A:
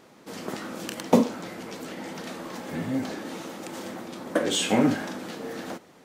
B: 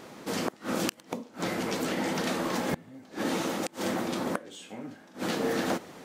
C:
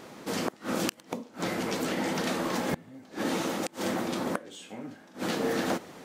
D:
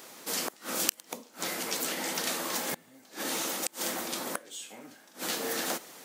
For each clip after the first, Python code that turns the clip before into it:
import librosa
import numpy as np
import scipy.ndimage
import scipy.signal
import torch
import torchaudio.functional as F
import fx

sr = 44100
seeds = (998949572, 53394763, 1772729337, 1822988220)

y1 = fx.gate_flip(x, sr, shuts_db=-23.0, range_db=-27)
y1 = y1 * 10.0 ** (7.0 / 20.0)
y2 = y1
y3 = fx.riaa(y2, sr, side='recording')
y3 = y3 * 10.0 ** (-3.5 / 20.0)